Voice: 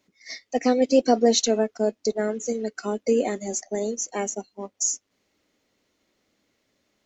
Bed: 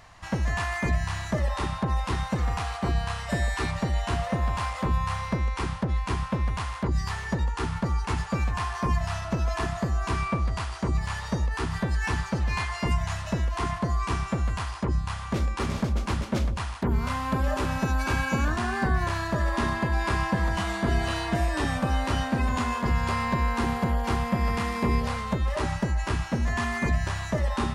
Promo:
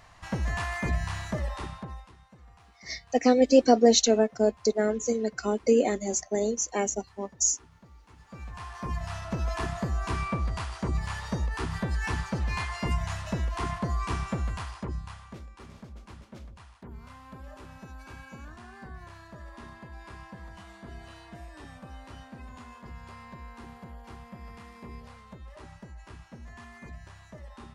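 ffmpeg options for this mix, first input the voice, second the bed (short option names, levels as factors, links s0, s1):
-filter_complex "[0:a]adelay=2600,volume=1[s0];[1:a]volume=11.2,afade=t=out:st=1.21:d=0.91:silence=0.0630957,afade=t=in:st=8.17:d=1.35:silence=0.0630957,afade=t=out:st=14.31:d=1.13:silence=0.149624[s1];[s0][s1]amix=inputs=2:normalize=0"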